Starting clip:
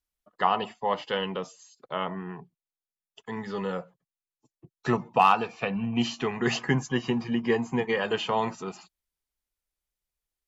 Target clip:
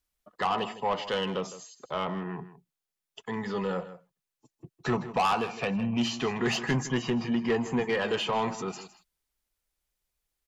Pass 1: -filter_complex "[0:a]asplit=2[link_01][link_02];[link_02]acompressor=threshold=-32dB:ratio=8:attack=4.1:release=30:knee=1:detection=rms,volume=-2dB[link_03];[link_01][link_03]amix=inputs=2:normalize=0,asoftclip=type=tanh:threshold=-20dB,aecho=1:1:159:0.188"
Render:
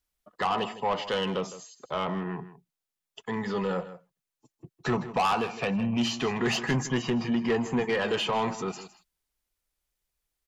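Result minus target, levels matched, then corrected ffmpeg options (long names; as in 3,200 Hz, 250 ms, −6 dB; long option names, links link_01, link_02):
downward compressor: peak gain reduction −8.5 dB
-filter_complex "[0:a]asplit=2[link_01][link_02];[link_02]acompressor=threshold=-41.5dB:ratio=8:attack=4.1:release=30:knee=1:detection=rms,volume=-2dB[link_03];[link_01][link_03]amix=inputs=2:normalize=0,asoftclip=type=tanh:threshold=-20dB,aecho=1:1:159:0.188"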